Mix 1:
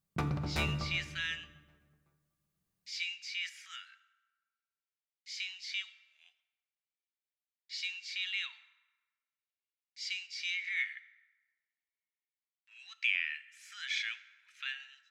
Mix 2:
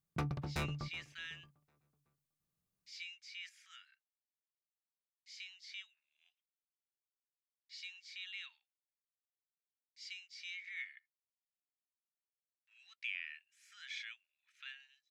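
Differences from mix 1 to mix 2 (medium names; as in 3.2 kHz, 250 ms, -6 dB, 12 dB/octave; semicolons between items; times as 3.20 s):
speech -9.0 dB; reverb: off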